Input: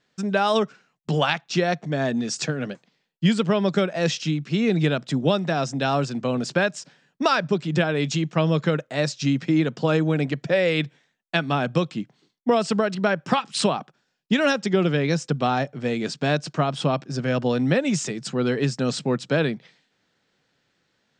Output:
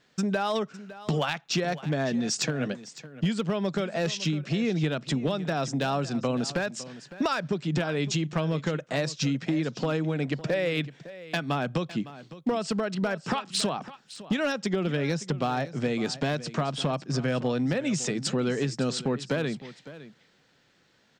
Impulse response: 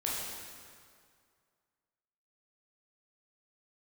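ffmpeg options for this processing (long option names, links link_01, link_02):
-af "acompressor=threshold=-30dB:ratio=5,asoftclip=type=hard:threshold=-24dB,aecho=1:1:558:0.158,volume=5dB"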